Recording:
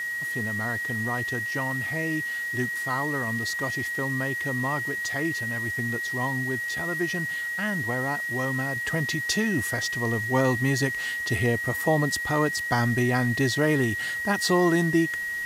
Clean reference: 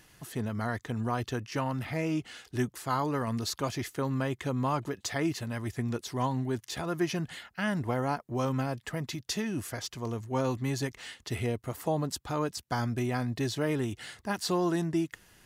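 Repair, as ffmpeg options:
ffmpeg -i in.wav -af "bandreject=frequency=1900:width=30,afwtdn=0.005,asetnsamples=nb_out_samples=441:pad=0,asendcmd='8.76 volume volume -6.5dB',volume=0dB" out.wav

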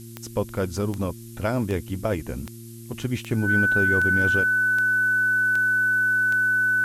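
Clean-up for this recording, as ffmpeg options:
ffmpeg -i in.wav -af "adeclick=threshold=4,bandreject=frequency=115:width_type=h:width=4,bandreject=frequency=230:width_type=h:width=4,bandreject=frequency=345:width_type=h:width=4,bandreject=frequency=1500:width=30,afftdn=noise_reduction=29:noise_floor=-40" out.wav

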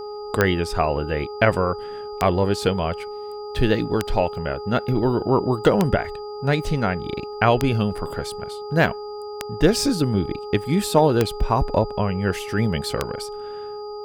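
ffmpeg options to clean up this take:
ffmpeg -i in.wav -af "adeclick=threshold=4,bandreject=frequency=416.4:width_type=h:width=4,bandreject=frequency=832.8:width_type=h:width=4,bandreject=frequency=1249.2:width_type=h:width=4,bandreject=frequency=4800:width=30" out.wav

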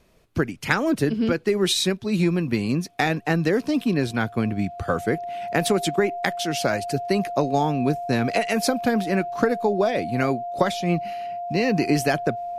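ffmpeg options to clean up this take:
ffmpeg -i in.wav -af "bandreject=frequency=700:width=30" out.wav

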